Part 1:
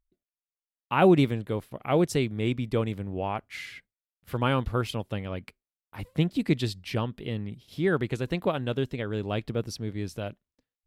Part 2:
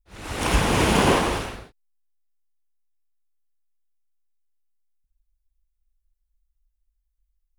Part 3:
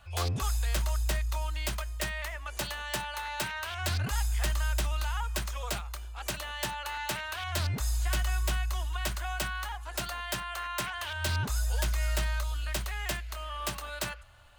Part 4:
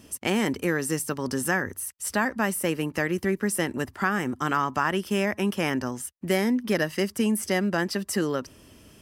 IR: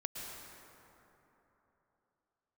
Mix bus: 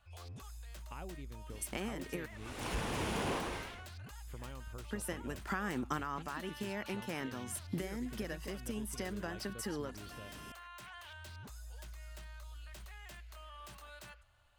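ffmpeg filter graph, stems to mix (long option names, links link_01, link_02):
-filter_complex "[0:a]acompressor=threshold=-33dB:ratio=6,volume=-14dB,asplit=2[link_01][link_02];[1:a]asoftclip=type=tanh:threshold=-13.5dB,adelay=2200,volume=-15.5dB[link_03];[2:a]alimiter=level_in=6.5dB:limit=-24dB:level=0:latency=1:release=15,volume=-6.5dB,volume=-12.5dB[link_04];[3:a]acompressor=threshold=-34dB:ratio=6,adelay=1500,volume=1dB,asplit=3[link_05][link_06][link_07];[link_05]atrim=end=2.26,asetpts=PTS-STARTPTS,afade=type=out:start_time=2.256:duration=0.004:curve=hsin[link_08];[link_06]atrim=start=2.26:end=4.9,asetpts=PTS-STARTPTS,volume=0[link_09];[link_07]atrim=start=4.9,asetpts=PTS-STARTPTS,afade=type=in:duration=0.004:curve=hsin[link_10];[link_08][link_09][link_10]concat=n=3:v=0:a=1[link_11];[link_02]apad=whole_len=463894[link_12];[link_11][link_12]sidechaincompress=threshold=-52dB:ratio=5:attack=16:release=426[link_13];[link_01][link_03][link_04][link_13]amix=inputs=4:normalize=0"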